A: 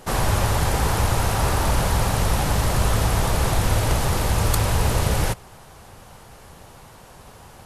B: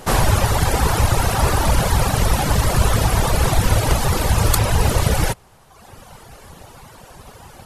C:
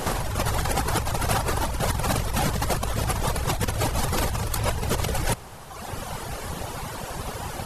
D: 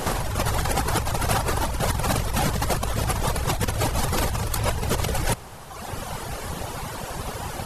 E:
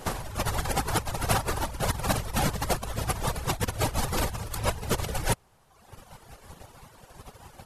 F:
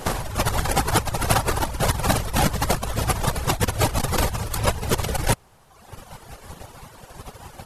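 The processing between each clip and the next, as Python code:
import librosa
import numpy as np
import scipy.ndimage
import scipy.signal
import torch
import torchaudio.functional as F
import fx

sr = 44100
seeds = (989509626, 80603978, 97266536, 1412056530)

y1 = fx.dereverb_blind(x, sr, rt60_s=1.2)
y1 = F.gain(torch.from_numpy(y1), 6.5).numpy()
y2 = fx.over_compress(y1, sr, threshold_db=-25.0, ratio=-1.0)
y3 = fx.quant_float(y2, sr, bits=8)
y3 = F.gain(torch.from_numpy(y3), 1.0).numpy()
y4 = fx.upward_expand(y3, sr, threshold_db=-34.0, expansion=2.5)
y5 = fx.transformer_sat(y4, sr, knee_hz=200.0)
y5 = F.gain(torch.from_numpy(y5), 7.5).numpy()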